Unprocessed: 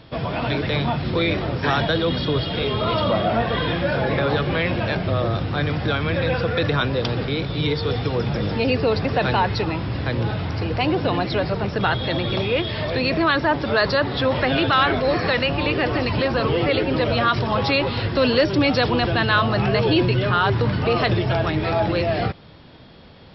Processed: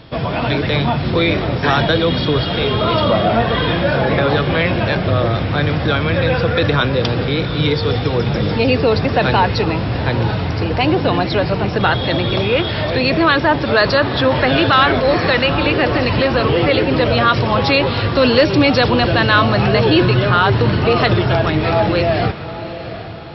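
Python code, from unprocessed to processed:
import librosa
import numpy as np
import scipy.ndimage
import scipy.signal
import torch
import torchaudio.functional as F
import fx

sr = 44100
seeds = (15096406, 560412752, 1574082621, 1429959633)

y = fx.echo_diffused(x, sr, ms=781, feedback_pct=45, wet_db=-13.0)
y = y * 10.0 ** (5.5 / 20.0)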